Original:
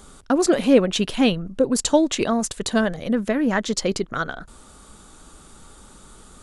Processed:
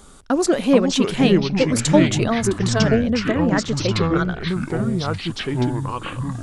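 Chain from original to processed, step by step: 2.47–4.17 high shelf 6100 Hz -11.5 dB; echoes that change speed 0.331 s, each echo -5 st, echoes 3

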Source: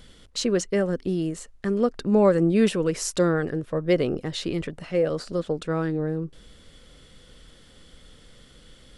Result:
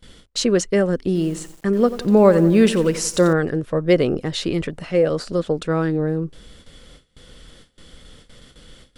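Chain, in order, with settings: gate with hold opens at -40 dBFS; 1.06–3.33 lo-fi delay 89 ms, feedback 55%, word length 7-bit, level -13.5 dB; gain +5.5 dB

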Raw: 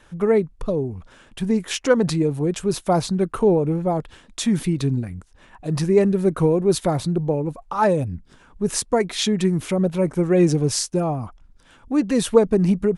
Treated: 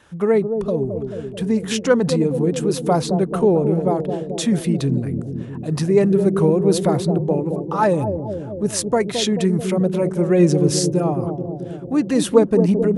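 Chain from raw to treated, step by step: HPF 62 Hz; notch 2300 Hz, Q 28; analogue delay 0.218 s, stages 1024, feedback 70%, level -6.5 dB; gain +1 dB

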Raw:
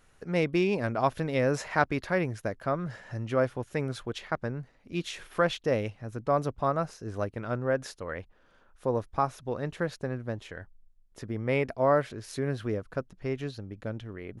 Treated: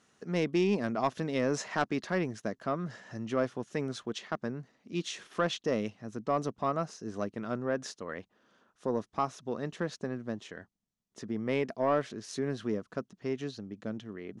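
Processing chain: speaker cabinet 190–8600 Hz, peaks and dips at 210 Hz +6 dB, 540 Hz -5 dB, 860 Hz -4 dB, 1500 Hz -4 dB, 2300 Hz -5 dB, 6100 Hz +4 dB; soft clip -17 dBFS, distortion -21 dB

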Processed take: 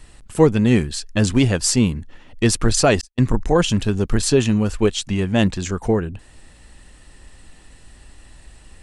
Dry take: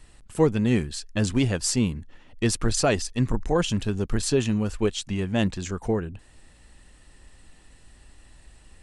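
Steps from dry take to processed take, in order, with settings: 3.01–3.45 gate -26 dBFS, range -47 dB; gain +6.5 dB

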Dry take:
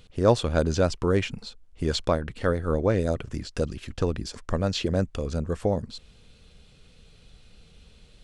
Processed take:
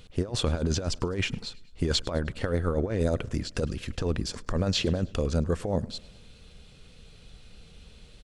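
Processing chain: negative-ratio compressor -25 dBFS, ratio -0.5; feedback echo 0.104 s, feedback 57%, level -23 dB

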